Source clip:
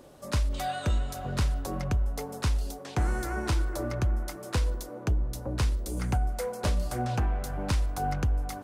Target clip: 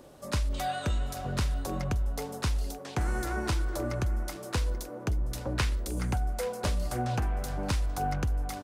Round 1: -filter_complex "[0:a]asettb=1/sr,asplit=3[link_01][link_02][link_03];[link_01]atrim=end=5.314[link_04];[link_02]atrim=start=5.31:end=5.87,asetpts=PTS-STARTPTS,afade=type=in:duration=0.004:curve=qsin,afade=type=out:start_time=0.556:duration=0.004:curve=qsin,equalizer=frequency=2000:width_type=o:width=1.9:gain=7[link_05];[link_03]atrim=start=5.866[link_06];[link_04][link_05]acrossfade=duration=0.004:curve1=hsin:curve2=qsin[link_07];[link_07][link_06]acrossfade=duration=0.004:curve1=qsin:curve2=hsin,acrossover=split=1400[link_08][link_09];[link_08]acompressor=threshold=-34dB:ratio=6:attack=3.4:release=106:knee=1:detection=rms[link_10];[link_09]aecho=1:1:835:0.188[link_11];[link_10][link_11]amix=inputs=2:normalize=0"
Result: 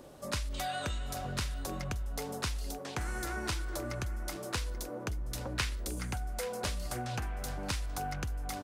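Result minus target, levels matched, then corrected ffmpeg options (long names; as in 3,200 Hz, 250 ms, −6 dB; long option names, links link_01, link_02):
downward compressor: peak gain reduction +8 dB
-filter_complex "[0:a]asettb=1/sr,asplit=3[link_01][link_02][link_03];[link_01]atrim=end=5.314[link_04];[link_02]atrim=start=5.31:end=5.87,asetpts=PTS-STARTPTS,afade=type=in:duration=0.004:curve=qsin,afade=type=out:start_time=0.556:duration=0.004:curve=qsin,equalizer=frequency=2000:width_type=o:width=1.9:gain=7[link_05];[link_03]atrim=start=5.866[link_06];[link_04][link_05]acrossfade=duration=0.004:curve1=hsin:curve2=qsin[link_07];[link_07][link_06]acrossfade=duration=0.004:curve1=qsin:curve2=hsin,acrossover=split=1400[link_08][link_09];[link_08]acompressor=threshold=-24.5dB:ratio=6:attack=3.4:release=106:knee=1:detection=rms[link_10];[link_09]aecho=1:1:835:0.188[link_11];[link_10][link_11]amix=inputs=2:normalize=0"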